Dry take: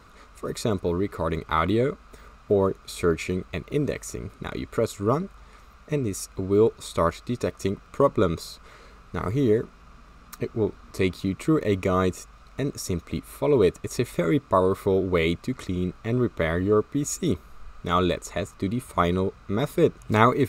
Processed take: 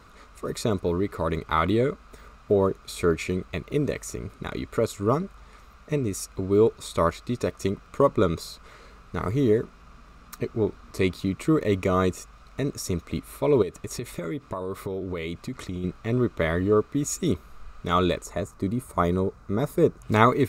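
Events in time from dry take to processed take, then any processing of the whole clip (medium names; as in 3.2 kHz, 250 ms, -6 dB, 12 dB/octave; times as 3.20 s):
13.62–15.84 s: compression 12:1, threshold -27 dBFS
18.24–20.03 s: peaking EQ 3 kHz -9.5 dB 1.4 oct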